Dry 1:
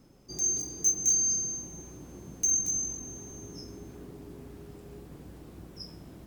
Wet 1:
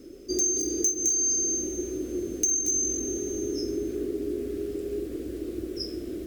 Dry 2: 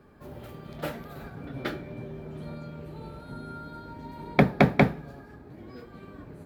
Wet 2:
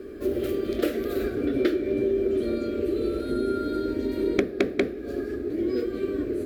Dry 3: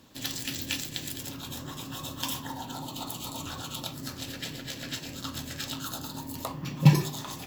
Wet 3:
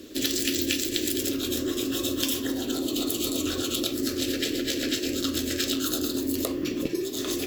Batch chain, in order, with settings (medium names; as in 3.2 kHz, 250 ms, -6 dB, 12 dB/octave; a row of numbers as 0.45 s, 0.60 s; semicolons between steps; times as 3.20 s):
peaking EQ 360 Hz +12 dB 0.74 oct; Chebyshev shaper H 5 -21 dB, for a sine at -2 dBFS; compression 12:1, threshold -28 dBFS; static phaser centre 370 Hz, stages 4; normalise loudness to -27 LUFS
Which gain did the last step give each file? +6.0 dB, +9.5 dB, +7.5 dB